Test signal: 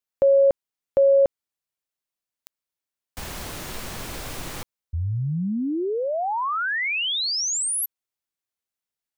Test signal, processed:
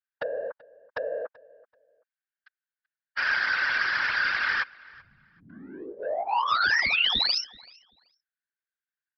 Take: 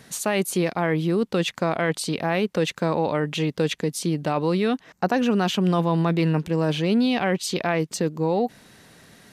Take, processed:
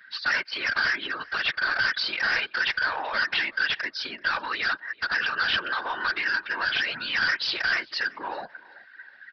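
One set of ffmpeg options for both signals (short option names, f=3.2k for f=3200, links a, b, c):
-filter_complex "[0:a]afftdn=nr=22:nf=-41,highshelf=f=3.4k:g=-6.5,aecho=1:1:3.3:0.83,acompressor=threshold=-23dB:ratio=16:attack=6.8:release=185:knee=1:detection=peak,highpass=f=1.6k:t=q:w=11,apsyclip=17dB,aresample=11025,asoftclip=type=tanh:threshold=-16.5dB,aresample=44100,afftfilt=real='hypot(re,im)*cos(2*PI*random(0))':imag='hypot(re,im)*sin(2*PI*random(1))':win_size=512:overlap=0.75,asplit=2[a][b];[b]adelay=383,lowpass=f=3.6k:p=1,volume=-22.5dB,asplit=2[c][d];[d]adelay=383,lowpass=f=3.6k:p=1,volume=0.26[e];[a][c][e]amix=inputs=3:normalize=0"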